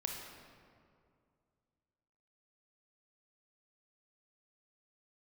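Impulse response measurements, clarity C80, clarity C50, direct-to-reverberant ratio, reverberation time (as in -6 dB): 4.0 dB, 2.5 dB, 1.0 dB, 2.3 s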